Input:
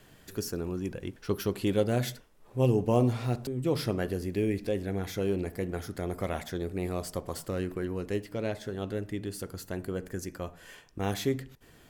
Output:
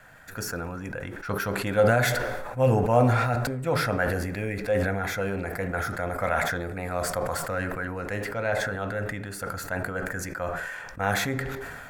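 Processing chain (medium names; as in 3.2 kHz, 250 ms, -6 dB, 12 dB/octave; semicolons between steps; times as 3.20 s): high-order bell 890 Hz +12 dB 2.4 oct; reverberation RT60 1.1 s, pre-delay 3 ms, DRR 15 dB; decay stretcher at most 29 dB/s; trim -2 dB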